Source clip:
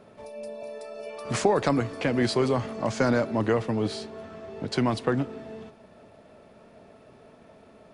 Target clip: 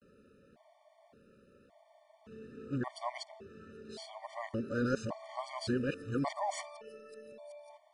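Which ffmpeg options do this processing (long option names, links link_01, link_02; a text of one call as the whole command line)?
ffmpeg -i in.wav -af "areverse,afftfilt=real='re*gt(sin(2*PI*0.88*pts/sr)*(1-2*mod(floor(b*sr/1024/600),2)),0)':imag='im*gt(sin(2*PI*0.88*pts/sr)*(1-2*mod(floor(b*sr/1024/600),2)),0)':win_size=1024:overlap=0.75,volume=-8dB" out.wav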